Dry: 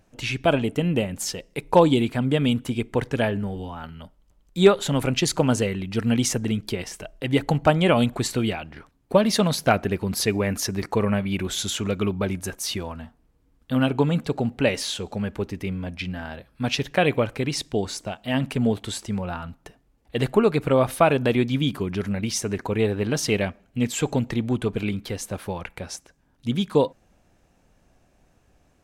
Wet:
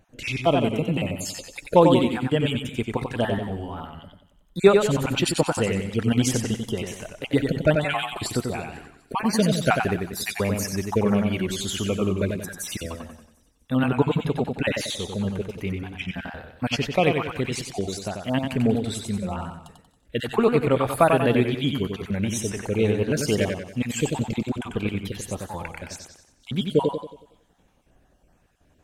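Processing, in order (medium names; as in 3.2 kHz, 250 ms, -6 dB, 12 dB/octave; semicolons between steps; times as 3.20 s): random holes in the spectrogram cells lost 32%; peaking EQ 5.4 kHz -4.5 dB 0.59 oct; feedback echo behind a high-pass 248 ms, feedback 45%, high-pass 4.2 kHz, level -19.5 dB; modulated delay 92 ms, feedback 43%, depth 71 cents, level -5 dB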